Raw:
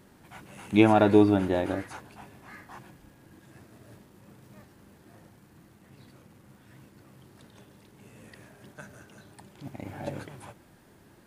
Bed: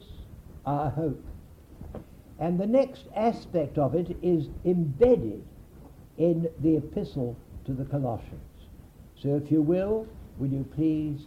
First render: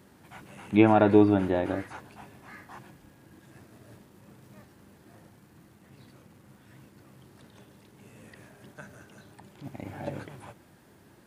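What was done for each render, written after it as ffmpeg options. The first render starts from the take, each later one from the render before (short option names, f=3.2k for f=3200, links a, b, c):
-filter_complex "[0:a]highpass=53,acrossover=split=3200[a][b];[b]acompressor=threshold=-56dB:ratio=4:attack=1:release=60[c];[a][c]amix=inputs=2:normalize=0"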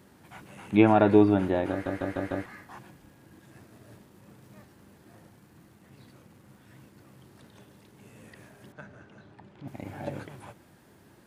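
-filter_complex "[0:a]asettb=1/sr,asplit=3[a][b][c];[a]atrim=end=8.724[d];[b]atrim=start=8.72:end=9.68,asetpts=PTS-STARTPTS,afade=t=in:d=0.004:c=qsin,afade=t=out:st=0.956:d=0.004:c=qsin,adynamicsmooth=sensitivity=6.5:basefreq=3.7k[e];[c]atrim=start=9.676[f];[d][e]acrossfade=d=0.004:c1=hsin:c2=qsin[g];[g][f]acrossfade=d=0.004:c1=qsin:c2=hsin,asplit=6[h][i][j][k][l][m];[h]atrim=end=1.862[n];[i]atrim=start=1.708:end=1.862[o];[j]atrim=start=1.708:end=1.862[p];[k]atrim=start=1.708:end=1.862[q];[l]atrim=start=1.708:end=1.862[r];[m]atrim=start=2.458[s];[n][o]acrossfade=d=0.004:c1=hsin:c2=hsin[t];[t][p]acrossfade=d=0.004:c1=hsin:c2=hsin[u];[u][q]acrossfade=d=0.004:c1=hsin:c2=hsin[v];[v][r]acrossfade=d=0.004:c1=hsin:c2=hsin[w];[w][s]acrossfade=d=0.004:c1=hsin:c2=hsin"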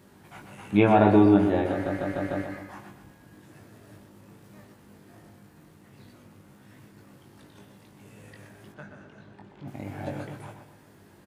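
-filter_complex "[0:a]asplit=2[a][b];[b]adelay=20,volume=-4.5dB[c];[a][c]amix=inputs=2:normalize=0,asplit=2[d][e];[e]adelay=123,lowpass=f=2.8k:p=1,volume=-7dB,asplit=2[f][g];[g]adelay=123,lowpass=f=2.8k:p=1,volume=0.47,asplit=2[h][i];[i]adelay=123,lowpass=f=2.8k:p=1,volume=0.47,asplit=2[j][k];[k]adelay=123,lowpass=f=2.8k:p=1,volume=0.47,asplit=2[l][m];[m]adelay=123,lowpass=f=2.8k:p=1,volume=0.47,asplit=2[n][o];[o]adelay=123,lowpass=f=2.8k:p=1,volume=0.47[p];[f][h][j][l][n][p]amix=inputs=6:normalize=0[q];[d][q]amix=inputs=2:normalize=0"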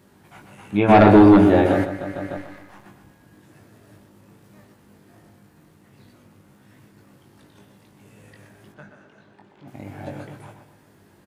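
-filter_complex "[0:a]asplit=3[a][b][c];[a]afade=t=out:st=0.88:d=0.02[d];[b]aeval=exprs='0.531*sin(PI/2*2*val(0)/0.531)':c=same,afade=t=in:st=0.88:d=0.02,afade=t=out:st=1.84:d=0.02[e];[c]afade=t=in:st=1.84:d=0.02[f];[d][e][f]amix=inputs=3:normalize=0,asettb=1/sr,asplit=3[g][h][i];[g]atrim=end=2.374[j];[h]atrim=start=2.37:end=2.86,asetpts=PTS-STARTPTS,afade=t=in:d=0.004:c=qsin,afade=t=out:st=0.486:d=0.004:c=qsin,aeval=exprs='if(lt(val(0),0),0.251*val(0),val(0))':c=same[k];[i]atrim=start=2.856[l];[j][k]acrossfade=d=0.004:c1=hsin:c2=qsin[m];[m][l]acrossfade=d=0.004:c1=qsin:c2=hsin,asettb=1/sr,asplit=3[n][o][p];[n]atrim=end=8.904[q];[o]atrim=start=8.9:end=9.73,asetpts=PTS-STARTPTS,afade=t=in:d=0.004:c=qsin,afade=t=out:st=0.826:d=0.004:c=qsin,lowshelf=f=150:g=-11.5[r];[p]atrim=start=9.726[s];[q][r]acrossfade=d=0.004:c1=hsin:c2=qsin[t];[t][s]acrossfade=d=0.004:c1=qsin:c2=hsin"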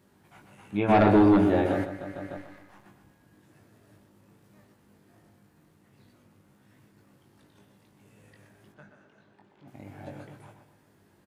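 -af "volume=-8dB"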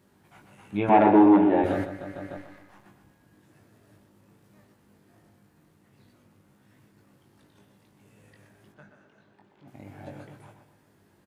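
-filter_complex "[0:a]asettb=1/sr,asplit=3[a][b][c];[a]atrim=end=0.894[d];[b]atrim=start=0.89:end=1.64,asetpts=PTS-STARTPTS,afade=t=in:d=0.004:c=qsin,afade=t=out:st=0.746:d=0.004:c=qsin,highpass=200,equalizer=f=320:t=q:w=4:g=4,equalizer=f=880:t=q:w=4:g=9,equalizer=f=1.3k:t=q:w=4:g=-6,lowpass=f=2.9k:w=0.5412,lowpass=f=2.9k:w=1.3066[e];[c]atrim=start=1.636[f];[d][e]acrossfade=d=0.004:c1=hsin:c2=qsin[g];[g][f]acrossfade=d=0.004:c1=qsin:c2=hsin"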